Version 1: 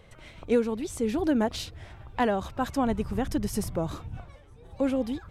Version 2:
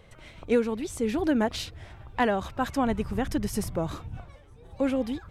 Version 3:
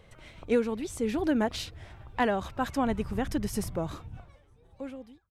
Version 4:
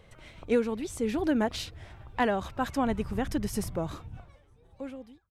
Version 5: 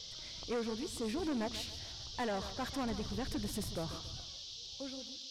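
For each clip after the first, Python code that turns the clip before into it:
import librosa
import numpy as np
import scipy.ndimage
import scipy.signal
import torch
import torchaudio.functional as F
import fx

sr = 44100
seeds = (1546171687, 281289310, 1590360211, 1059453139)

y1 = fx.dynamic_eq(x, sr, hz=2000.0, q=1.0, threshold_db=-45.0, ratio=4.0, max_db=4)
y2 = fx.fade_out_tail(y1, sr, length_s=1.65)
y2 = F.gain(torch.from_numpy(y2), -2.0).numpy()
y3 = y2
y4 = fx.dmg_noise_band(y3, sr, seeds[0], low_hz=3100.0, high_hz=5800.0, level_db=-43.0)
y4 = 10.0 ** (-27.0 / 20.0) * np.tanh(y4 / 10.0 ** (-27.0 / 20.0))
y4 = fx.echo_thinned(y4, sr, ms=140, feedback_pct=43, hz=150.0, wet_db=-12.5)
y4 = F.gain(torch.from_numpy(y4), -5.0).numpy()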